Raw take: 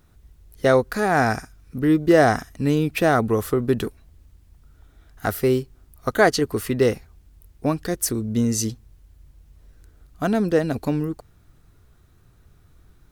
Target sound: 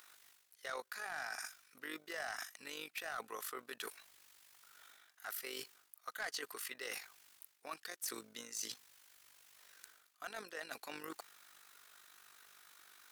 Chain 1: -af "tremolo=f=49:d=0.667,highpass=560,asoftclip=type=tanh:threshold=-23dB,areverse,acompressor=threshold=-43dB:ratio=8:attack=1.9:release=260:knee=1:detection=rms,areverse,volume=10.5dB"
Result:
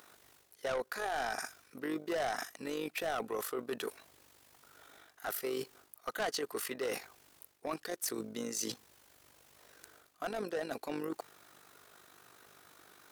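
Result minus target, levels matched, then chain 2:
500 Hz band +6.5 dB; downward compressor: peak gain reduction −5 dB
-af "tremolo=f=49:d=0.667,highpass=1400,asoftclip=type=tanh:threshold=-23dB,areverse,acompressor=threshold=-49dB:ratio=8:attack=1.9:release=260:knee=1:detection=rms,areverse,volume=10.5dB"

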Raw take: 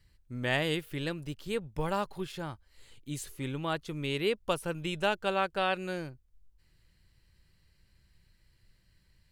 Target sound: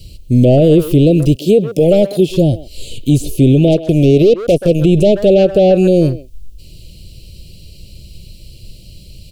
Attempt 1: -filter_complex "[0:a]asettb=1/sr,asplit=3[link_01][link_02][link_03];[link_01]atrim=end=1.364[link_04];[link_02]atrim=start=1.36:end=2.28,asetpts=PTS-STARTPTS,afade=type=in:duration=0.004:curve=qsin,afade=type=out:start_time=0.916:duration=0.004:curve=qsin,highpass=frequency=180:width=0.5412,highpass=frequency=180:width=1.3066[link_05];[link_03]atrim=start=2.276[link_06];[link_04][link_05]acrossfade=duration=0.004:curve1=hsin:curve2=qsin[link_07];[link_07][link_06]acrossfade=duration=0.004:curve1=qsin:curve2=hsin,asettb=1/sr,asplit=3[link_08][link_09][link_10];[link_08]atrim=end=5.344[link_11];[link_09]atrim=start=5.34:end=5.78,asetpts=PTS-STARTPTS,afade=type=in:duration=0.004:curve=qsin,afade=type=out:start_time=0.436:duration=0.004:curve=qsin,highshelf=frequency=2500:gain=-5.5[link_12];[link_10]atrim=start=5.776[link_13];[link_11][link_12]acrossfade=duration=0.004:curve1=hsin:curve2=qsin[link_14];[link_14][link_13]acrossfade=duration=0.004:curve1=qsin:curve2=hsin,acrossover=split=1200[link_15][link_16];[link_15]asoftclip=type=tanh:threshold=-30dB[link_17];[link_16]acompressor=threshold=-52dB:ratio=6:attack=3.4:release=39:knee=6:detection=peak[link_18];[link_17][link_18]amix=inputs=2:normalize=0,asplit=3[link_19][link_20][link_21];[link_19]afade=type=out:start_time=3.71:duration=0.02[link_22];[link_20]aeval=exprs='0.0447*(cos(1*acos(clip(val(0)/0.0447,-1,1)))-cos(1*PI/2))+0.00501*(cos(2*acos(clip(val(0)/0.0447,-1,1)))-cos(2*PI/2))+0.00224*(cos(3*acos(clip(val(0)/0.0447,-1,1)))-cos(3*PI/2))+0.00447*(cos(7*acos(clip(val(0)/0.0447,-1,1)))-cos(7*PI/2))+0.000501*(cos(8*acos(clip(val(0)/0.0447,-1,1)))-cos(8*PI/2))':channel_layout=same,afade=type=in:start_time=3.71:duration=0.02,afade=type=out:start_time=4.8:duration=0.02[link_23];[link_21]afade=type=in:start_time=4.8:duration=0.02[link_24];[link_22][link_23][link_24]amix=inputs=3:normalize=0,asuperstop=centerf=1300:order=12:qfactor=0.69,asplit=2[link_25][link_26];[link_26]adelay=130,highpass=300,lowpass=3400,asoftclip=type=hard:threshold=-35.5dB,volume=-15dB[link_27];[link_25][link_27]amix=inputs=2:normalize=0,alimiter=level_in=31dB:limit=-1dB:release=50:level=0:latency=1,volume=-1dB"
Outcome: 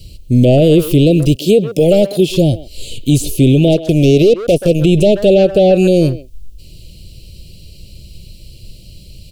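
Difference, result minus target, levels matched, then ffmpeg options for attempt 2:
downward compressor: peak gain reduction −6 dB
-filter_complex "[0:a]asettb=1/sr,asplit=3[link_01][link_02][link_03];[link_01]atrim=end=1.364[link_04];[link_02]atrim=start=1.36:end=2.28,asetpts=PTS-STARTPTS,afade=type=in:duration=0.004:curve=qsin,afade=type=out:start_time=0.916:duration=0.004:curve=qsin,highpass=frequency=180:width=0.5412,highpass=frequency=180:width=1.3066[link_05];[link_03]atrim=start=2.276[link_06];[link_04][link_05]acrossfade=duration=0.004:curve1=hsin:curve2=qsin[link_07];[link_07][link_06]acrossfade=duration=0.004:curve1=qsin:curve2=hsin,asettb=1/sr,asplit=3[link_08][link_09][link_10];[link_08]atrim=end=5.344[link_11];[link_09]atrim=start=5.34:end=5.78,asetpts=PTS-STARTPTS,afade=type=in:duration=0.004:curve=qsin,afade=type=out:start_time=0.436:duration=0.004:curve=qsin,highshelf=frequency=2500:gain=-5.5[link_12];[link_10]atrim=start=5.776[link_13];[link_11][link_12]acrossfade=duration=0.004:curve1=hsin:curve2=qsin[link_14];[link_14][link_13]acrossfade=duration=0.004:curve1=qsin:curve2=hsin,acrossover=split=1200[link_15][link_16];[link_15]asoftclip=type=tanh:threshold=-30dB[link_17];[link_16]acompressor=threshold=-59.5dB:ratio=6:attack=3.4:release=39:knee=6:detection=peak[link_18];[link_17][link_18]amix=inputs=2:normalize=0,asplit=3[link_19][link_20][link_21];[link_19]afade=type=out:start_time=3.71:duration=0.02[link_22];[link_20]aeval=exprs='0.0447*(cos(1*acos(clip(val(0)/0.0447,-1,1)))-cos(1*PI/2))+0.00501*(cos(2*acos(clip(val(0)/0.0447,-1,1)))-cos(2*PI/2))+0.00224*(cos(3*acos(clip(val(0)/0.0447,-1,1)))-cos(3*PI/2))+0.00447*(cos(7*acos(clip(val(0)/0.0447,-1,1)))-cos(7*PI/2))+0.000501*(cos(8*acos(clip(val(0)/0.0447,-1,1)))-cos(8*PI/2))':channel_layout=same,afade=type=in:start_time=3.71:duration=0.02,afade=type=out:start_time=4.8:duration=0.02[link_23];[link_21]afade=type=in:start_time=4.8:duration=0.02[link_24];[link_22][link_23][link_24]amix=inputs=3:normalize=0,asuperstop=centerf=1300:order=12:qfactor=0.69,asplit=2[link_25][link_26];[link_26]adelay=130,highpass=300,lowpass=3400,asoftclip=type=hard:threshold=-35.5dB,volume=-15dB[link_27];[link_25][link_27]amix=inputs=2:normalize=0,alimiter=level_in=31dB:limit=-1dB:release=50:level=0:latency=1,volume=-1dB"

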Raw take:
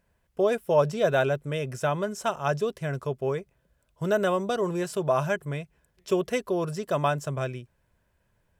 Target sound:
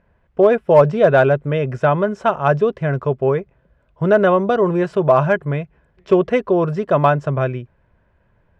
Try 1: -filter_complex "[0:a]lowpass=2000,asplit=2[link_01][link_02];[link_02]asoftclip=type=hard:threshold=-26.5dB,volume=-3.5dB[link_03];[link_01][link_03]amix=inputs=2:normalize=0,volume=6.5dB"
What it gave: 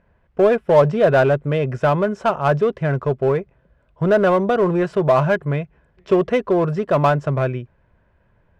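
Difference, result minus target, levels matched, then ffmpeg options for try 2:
hard clipping: distortion +16 dB
-filter_complex "[0:a]lowpass=2000,asplit=2[link_01][link_02];[link_02]asoftclip=type=hard:threshold=-16dB,volume=-3.5dB[link_03];[link_01][link_03]amix=inputs=2:normalize=0,volume=6.5dB"

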